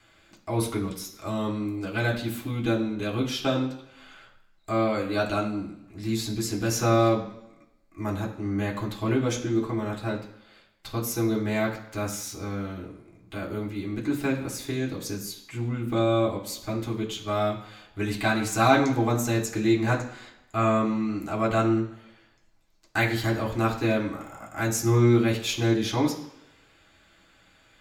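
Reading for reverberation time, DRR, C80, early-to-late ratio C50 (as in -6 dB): 0.80 s, -3.5 dB, 12.0 dB, 9.0 dB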